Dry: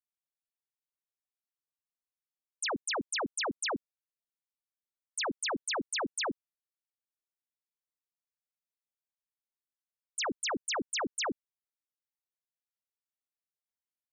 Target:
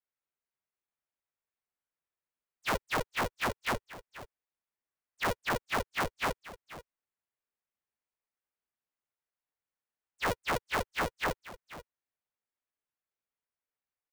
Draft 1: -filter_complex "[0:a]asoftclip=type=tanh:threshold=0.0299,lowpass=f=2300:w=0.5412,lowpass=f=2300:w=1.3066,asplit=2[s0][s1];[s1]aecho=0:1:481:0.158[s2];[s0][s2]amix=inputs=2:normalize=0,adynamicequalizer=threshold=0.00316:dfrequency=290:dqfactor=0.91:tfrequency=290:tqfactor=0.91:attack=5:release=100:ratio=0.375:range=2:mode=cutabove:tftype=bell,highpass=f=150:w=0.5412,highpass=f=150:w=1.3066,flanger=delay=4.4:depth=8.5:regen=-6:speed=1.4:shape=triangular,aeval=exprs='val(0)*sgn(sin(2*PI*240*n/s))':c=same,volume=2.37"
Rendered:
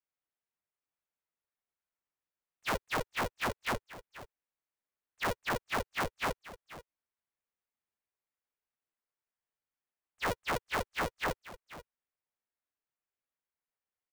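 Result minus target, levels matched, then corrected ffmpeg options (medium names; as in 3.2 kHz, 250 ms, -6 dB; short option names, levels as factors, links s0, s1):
saturation: distortion +15 dB
-filter_complex "[0:a]asoftclip=type=tanh:threshold=0.0794,lowpass=f=2300:w=0.5412,lowpass=f=2300:w=1.3066,asplit=2[s0][s1];[s1]aecho=0:1:481:0.158[s2];[s0][s2]amix=inputs=2:normalize=0,adynamicequalizer=threshold=0.00316:dfrequency=290:dqfactor=0.91:tfrequency=290:tqfactor=0.91:attack=5:release=100:ratio=0.375:range=2:mode=cutabove:tftype=bell,highpass=f=150:w=0.5412,highpass=f=150:w=1.3066,flanger=delay=4.4:depth=8.5:regen=-6:speed=1.4:shape=triangular,aeval=exprs='val(0)*sgn(sin(2*PI*240*n/s))':c=same,volume=2.37"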